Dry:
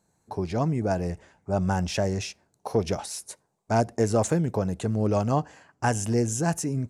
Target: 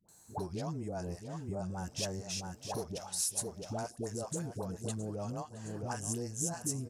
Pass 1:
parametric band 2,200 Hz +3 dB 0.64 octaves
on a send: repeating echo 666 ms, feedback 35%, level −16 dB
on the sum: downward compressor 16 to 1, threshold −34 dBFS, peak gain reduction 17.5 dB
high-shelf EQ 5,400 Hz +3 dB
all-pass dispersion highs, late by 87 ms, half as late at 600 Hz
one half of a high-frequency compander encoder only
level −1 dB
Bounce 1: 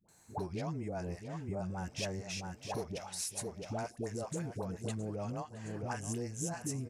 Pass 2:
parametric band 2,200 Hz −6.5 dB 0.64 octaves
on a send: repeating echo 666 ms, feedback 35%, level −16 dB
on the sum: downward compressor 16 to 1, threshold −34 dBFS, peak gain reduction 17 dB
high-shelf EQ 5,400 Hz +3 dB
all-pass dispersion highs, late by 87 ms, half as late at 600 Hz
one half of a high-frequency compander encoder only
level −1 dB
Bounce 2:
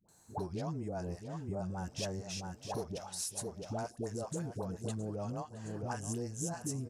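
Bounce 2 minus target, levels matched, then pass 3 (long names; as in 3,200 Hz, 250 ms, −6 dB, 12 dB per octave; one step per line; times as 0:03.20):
8,000 Hz band −3.5 dB
parametric band 2,200 Hz −6.5 dB 0.64 octaves
on a send: repeating echo 666 ms, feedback 35%, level −16 dB
on the sum: downward compressor 16 to 1, threshold −34 dBFS, peak gain reduction 17 dB
high-shelf EQ 5,400 Hz +11 dB
all-pass dispersion highs, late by 87 ms, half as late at 600 Hz
one half of a high-frequency compander encoder only
level −1 dB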